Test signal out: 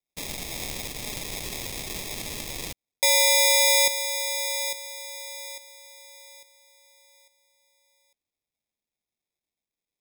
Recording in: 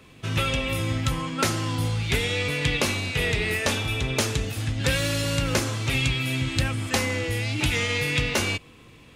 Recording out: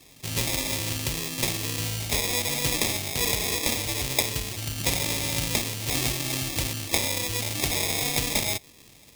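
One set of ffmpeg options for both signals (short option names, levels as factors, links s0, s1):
-af "acrusher=samples=30:mix=1:aa=0.000001,aexciter=amount=4.6:drive=6.7:freq=2100,volume=0.447"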